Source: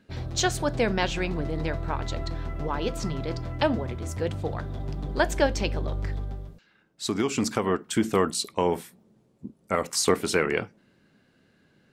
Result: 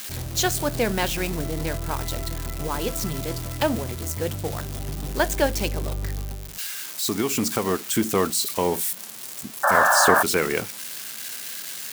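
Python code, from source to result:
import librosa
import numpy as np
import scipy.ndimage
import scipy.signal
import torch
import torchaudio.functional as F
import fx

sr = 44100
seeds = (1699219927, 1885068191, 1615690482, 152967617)

y = x + 0.5 * 10.0 ** (-22.0 / 20.0) * np.diff(np.sign(x), prepend=np.sign(x[:1]))
y = fx.spec_paint(y, sr, seeds[0], shape='noise', start_s=9.63, length_s=0.6, low_hz=540.0, high_hz=1800.0, level_db=-19.0)
y = F.gain(torch.from_numpy(y), 1.0).numpy()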